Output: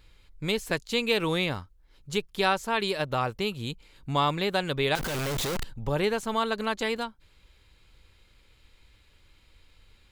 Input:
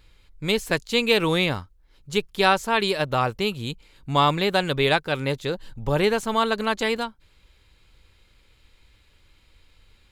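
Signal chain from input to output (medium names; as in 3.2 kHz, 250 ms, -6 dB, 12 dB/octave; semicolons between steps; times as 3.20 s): 4.95–5.64 s: one-bit comparator; in parallel at 0 dB: compression, threshold -29 dBFS, peak gain reduction 15 dB; on the sum: trim -7.5 dB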